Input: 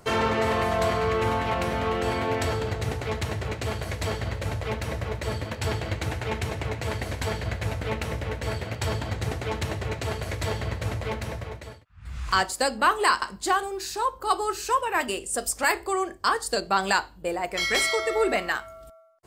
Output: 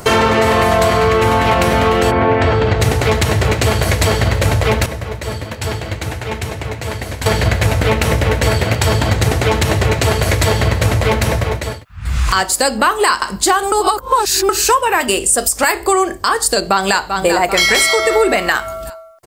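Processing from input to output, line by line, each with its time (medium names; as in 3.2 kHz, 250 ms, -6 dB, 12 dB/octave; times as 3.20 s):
2.10–2.79 s: low-pass 1.6 kHz -> 4.1 kHz
4.86–7.26 s: gain -12 dB
13.72–14.49 s: reverse
16.54–17.16 s: echo throw 390 ms, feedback 50%, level -12.5 dB
whole clip: treble shelf 7.4 kHz +6.5 dB; compression, threshold -28 dBFS; loudness maximiser +19.5 dB; trim -1 dB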